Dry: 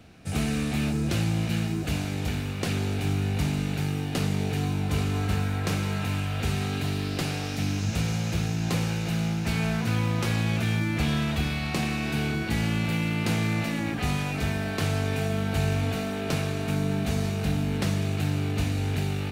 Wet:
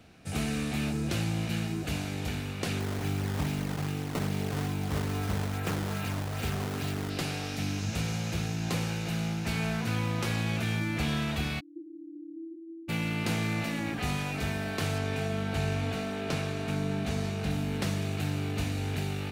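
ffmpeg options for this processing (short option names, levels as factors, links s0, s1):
-filter_complex "[0:a]asettb=1/sr,asplit=3[s0][s1][s2];[s0]atrim=end=2.804[s3];[s1]atrim=start=2.8:end=7.1,asetpts=PTS-STARTPTS,afade=t=in:d=0.004:c=qsin,afade=t=out:st=4.296:d=0.004:c=qsin,acrusher=samples=15:mix=1:aa=0.000001:lfo=1:lforange=24:lforate=2.4[s4];[s2]atrim=start=7.096[s5];[s3][s4]acrossfade=d=0.004:c1=hsin:c2=qsin[s6];[s6][s5]acrossfade=d=0.004:c1=qsin:c2=hsin,asplit=3[s7][s8][s9];[s7]afade=t=out:st=11.59:d=0.02[s10];[s8]asuperpass=centerf=320:order=12:qfactor=5.5,afade=t=in:st=11.59:d=0.02,afade=t=out:st=12.88:d=0.02[s11];[s9]afade=t=in:st=12.88:d=0.02[s12];[s10][s11][s12]amix=inputs=3:normalize=0,asettb=1/sr,asplit=3[s13][s14][s15];[s13]atrim=end=14.984[s16];[s14]atrim=start=14.98:end=17.51,asetpts=PTS-STARTPTS,afade=t=in:d=0.004:c=qsin,afade=t=out:st=2.526:d=0.004:c=qsin,highshelf=f=11000:g=-10.5[s17];[s15]atrim=start=17.506[s18];[s16][s17]acrossfade=d=0.004:c1=hsin:c2=qsin[s19];[s19][s18]acrossfade=d=0.004:c1=qsin:c2=hsin,lowshelf=f=220:g=-3.5,volume=0.75"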